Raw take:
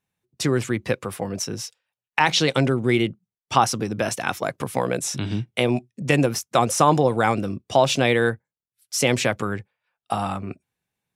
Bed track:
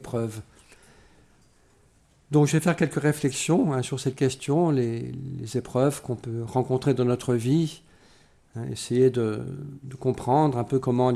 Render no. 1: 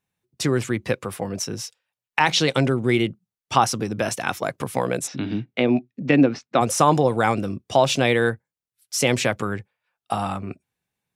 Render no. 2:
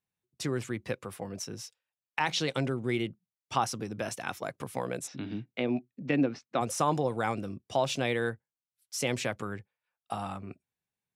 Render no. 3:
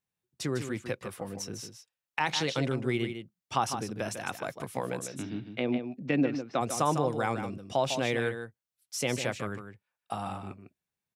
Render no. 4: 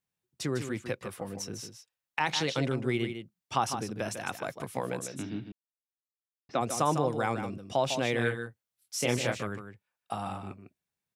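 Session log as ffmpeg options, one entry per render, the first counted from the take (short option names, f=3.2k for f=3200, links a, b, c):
-filter_complex "[0:a]asplit=3[a][b][c];[a]afade=t=out:st=5.06:d=0.02[d];[b]highpass=140,equalizer=f=270:t=q:w=4:g=9,equalizer=f=1k:t=q:w=4:g=-4,equalizer=f=3.2k:t=q:w=4:g=-5,lowpass=f=4.1k:w=0.5412,lowpass=f=4.1k:w=1.3066,afade=t=in:st=5.06:d=0.02,afade=t=out:st=6.6:d=0.02[e];[c]afade=t=in:st=6.6:d=0.02[f];[d][e][f]amix=inputs=3:normalize=0"
-af "volume=-10.5dB"
-af "aecho=1:1:152:0.376"
-filter_complex "[0:a]asettb=1/sr,asplit=3[a][b][c];[a]atrim=end=8.164[d];[b]atrim=start=8.16:end=9.43,asetpts=PTS-STARTPTS,afade=t=in:d=0.004:c=qsin,afade=t=out:st=1.266:d=0.004:c=qsin,asplit=2[e][f];[f]adelay=25,volume=-4dB[g];[e][g]amix=inputs=2:normalize=0,atrim=end_sample=56007[h];[c]atrim=start=9.426[i];[d][h]acrossfade=d=0.004:c1=hsin:c2=qsin[j];[j][i]acrossfade=d=0.004:c1=qsin:c2=hsin,asplit=3[k][l][m];[k]atrim=end=5.52,asetpts=PTS-STARTPTS,afade=t=out:st=5.516:d=0.004:c=hsin[n];[l]atrim=start=5.52:end=6.49,asetpts=PTS-STARTPTS,volume=0[o];[m]atrim=start=6.49,asetpts=PTS-STARTPTS,afade=t=in:d=0.004:c=hsin[p];[n][o][p]concat=n=3:v=0:a=1"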